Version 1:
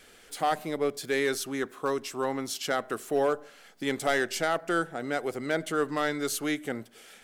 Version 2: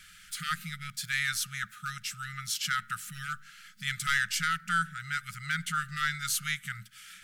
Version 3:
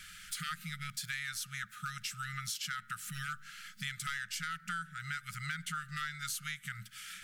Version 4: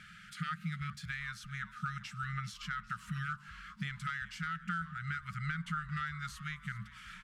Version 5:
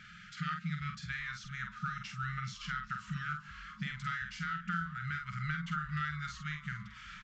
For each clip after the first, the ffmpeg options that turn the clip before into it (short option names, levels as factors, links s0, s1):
-af "afftfilt=real='re*(1-between(b*sr/4096,210,1200))':imag='im*(1-between(b*sr/4096,210,1200))':win_size=4096:overlap=0.75,volume=1.33"
-af "acompressor=threshold=0.0112:ratio=6,volume=1.33"
-filter_complex "[0:a]bandpass=f=340:t=q:w=0.76:csg=0,asplit=5[s0][s1][s2][s3][s4];[s1]adelay=396,afreqshift=-92,volume=0.141[s5];[s2]adelay=792,afreqshift=-184,volume=0.0624[s6];[s3]adelay=1188,afreqshift=-276,volume=0.0272[s7];[s4]adelay=1584,afreqshift=-368,volume=0.012[s8];[s0][s5][s6][s7][s8]amix=inputs=5:normalize=0,volume=3.55"
-filter_complex "[0:a]asplit=2[s0][s1];[s1]adelay=47,volume=0.562[s2];[s0][s2]amix=inputs=2:normalize=0,aresample=16000,aresample=44100"